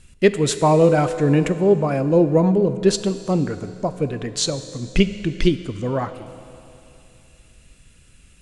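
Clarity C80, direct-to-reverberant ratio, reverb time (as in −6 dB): 12.5 dB, 11.0 dB, 2.8 s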